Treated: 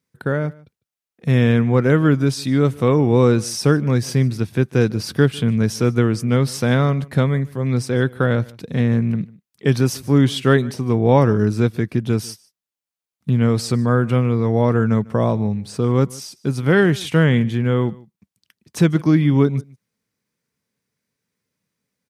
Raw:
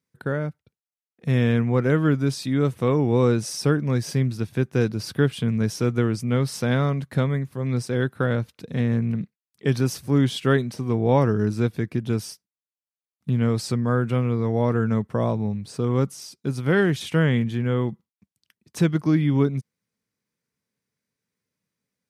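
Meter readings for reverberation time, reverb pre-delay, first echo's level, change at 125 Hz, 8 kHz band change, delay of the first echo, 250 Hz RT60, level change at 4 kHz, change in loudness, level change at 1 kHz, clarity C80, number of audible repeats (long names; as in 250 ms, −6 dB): no reverb audible, no reverb audible, −23.0 dB, +5.0 dB, +5.0 dB, 150 ms, no reverb audible, +5.0 dB, +5.0 dB, +5.0 dB, no reverb audible, 1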